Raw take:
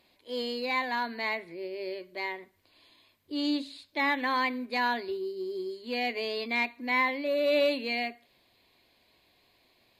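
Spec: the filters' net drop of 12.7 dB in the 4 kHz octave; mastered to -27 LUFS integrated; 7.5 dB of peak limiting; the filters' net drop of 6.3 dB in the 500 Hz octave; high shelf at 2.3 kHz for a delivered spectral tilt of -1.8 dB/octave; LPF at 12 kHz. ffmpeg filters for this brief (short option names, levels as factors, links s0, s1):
-af "lowpass=12000,equalizer=f=500:t=o:g=-7,highshelf=f=2300:g=-8.5,equalizer=f=4000:t=o:g=-8.5,volume=3.35,alimiter=limit=0.15:level=0:latency=1"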